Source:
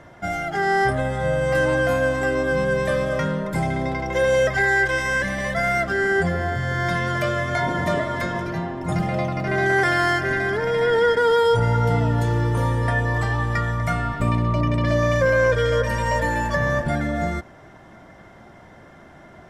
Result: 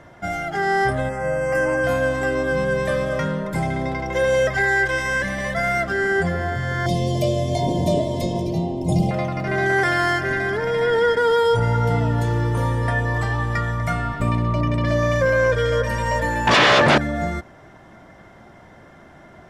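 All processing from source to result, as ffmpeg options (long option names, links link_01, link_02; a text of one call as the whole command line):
ffmpeg -i in.wav -filter_complex "[0:a]asettb=1/sr,asplit=3[link_01][link_02][link_03];[link_01]atrim=end=1.094[link_04];[link_02]atrim=start=1.09:end=1.84,asetpts=PTS-STARTPTS,afade=type=in:duration=0.004:curve=qsin,afade=type=out:start_time=0.746:duration=0.004:curve=qsin,asuperstop=centerf=3700:order=4:qfactor=1.6,equalizer=frequency=94:width=1.6:gain=-14.5[link_05];[link_03]atrim=start=1.836[link_06];[link_04][link_05]acrossfade=duration=0.004:curve1=hsin:curve2=qsin[link_07];[link_07][link_06]acrossfade=duration=0.004:curve1=qsin:curve2=hsin,asettb=1/sr,asplit=3[link_08][link_09][link_10];[link_08]atrim=end=6.864[link_11];[link_09]atrim=start=6.86:end=9.11,asetpts=PTS-STARTPTS,afade=type=in:duration=0.004:curve=qsin,afade=type=out:start_time=2.246:duration=0.004:curve=qsin,acontrast=24,asuperstop=centerf=1500:order=4:qfactor=0.59[link_12];[link_10]atrim=start=9.106[link_13];[link_11][link_12]acrossfade=duration=0.004:curve1=hsin:curve2=qsin[link_14];[link_14][link_13]acrossfade=duration=0.004:curve1=qsin:curve2=hsin,asettb=1/sr,asplit=3[link_15][link_16][link_17];[link_15]atrim=end=16.474[link_18];[link_16]atrim=start=16.47:end=16.98,asetpts=PTS-STARTPTS,afade=type=in:duration=0.004:curve=qsin,afade=type=out:start_time=0.506:duration=0.004:curve=qsin,aemphasis=mode=production:type=cd,aeval=exprs='0.316*sin(PI/2*4.47*val(0)/0.316)':channel_layout=same,highpass=130,lowpass=4500[link_19];[link_17]atrim=start=16.976[link_20];[link_18][link_19]acrossfade=duration=0.004:curve1=hsin:curve2=qsin[link_21];[link_21][link_20]acrossfade=duration=0.004:curve1=qsin:curve2=hsin" out.wav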